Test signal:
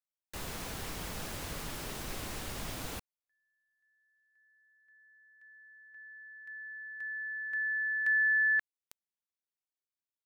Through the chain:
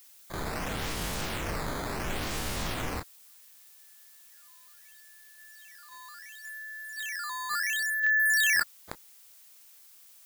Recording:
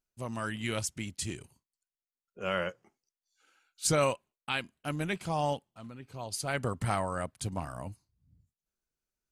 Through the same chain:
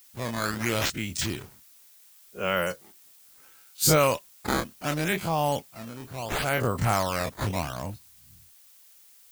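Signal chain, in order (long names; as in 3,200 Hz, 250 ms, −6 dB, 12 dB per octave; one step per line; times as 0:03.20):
every bin's largest magnitude spread in time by 60 ms
sample-and-hold swept by an LFO 9×, swing 160% 0.71 Hz
background noise blue −58 dBFS
level +3 dB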